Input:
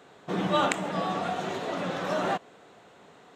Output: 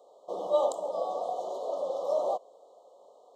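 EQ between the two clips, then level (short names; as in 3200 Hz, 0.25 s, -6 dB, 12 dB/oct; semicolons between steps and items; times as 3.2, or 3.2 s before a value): resonant high-pass 550 Hz, resonance Q 4.9; brick-wall FIR band-stop 1300–2900 Hz; band shelf 2100 Hz -9 dB; -8.5 dB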